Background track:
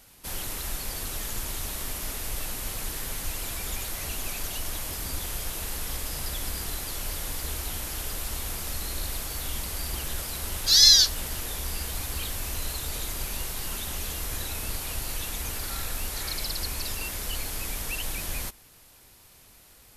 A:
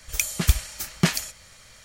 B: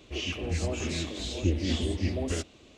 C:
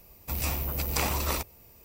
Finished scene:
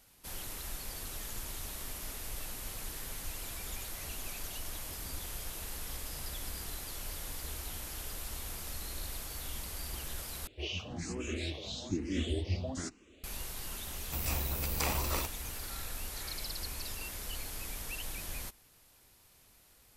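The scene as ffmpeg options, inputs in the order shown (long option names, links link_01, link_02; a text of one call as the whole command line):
ffmpeg -i bed.wav -i cue0.wav -i cue1.wav -i cue2.wav -filter_complex "[0:a]volume=-8.5dB[link_01];[2:a]asplit=2[link_02][link_03];[link_03]afreqshift=1.1[link_04];[link_02][link_04]amix=inputs=2:normalize=1[link_05];[link_01]asplit=2[link_06][link_07];[link_06]atrim=end=10.474[link_08];[link_05]atrim=end=2.77,asetpts=PTS-STARTPTS,volume=-3dB[link_09];[link_07]atrim=start=13.236[link_10];[3:a]atrim=end=1.84,asetpts=PTS-STARTPTS,volume=-5dB,afade=type=in:duration=0.004:curve=hsin,afade=type=out:start_time=1.836:duration=0.004:curve=hsin,adelay=13840[link_11];[link_08][link_09]acrossfade=duration=0.004:curve1=hsin:curve2=hsin[link_12];[link_12][link_10]acrossfade=duration=0.004:curve1=hsin:curve2=hsin[link_13];[link_13][link_11]amix=inputs=2:normalize=0" out.wav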